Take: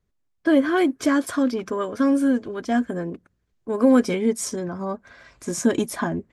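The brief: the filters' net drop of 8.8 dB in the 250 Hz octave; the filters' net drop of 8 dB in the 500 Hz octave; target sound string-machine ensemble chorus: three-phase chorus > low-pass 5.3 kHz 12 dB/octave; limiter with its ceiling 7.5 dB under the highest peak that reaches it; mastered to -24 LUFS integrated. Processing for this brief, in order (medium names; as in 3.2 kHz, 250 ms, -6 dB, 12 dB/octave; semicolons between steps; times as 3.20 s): peaking EQ 250 Hz -8 dB; peaking EQ 500 Hz -7.5 dB; peak limiter -20.5 dBFS; three-phase chorus; low-pass 5.3 kHz 12 dB/octave; trim +10.5 dB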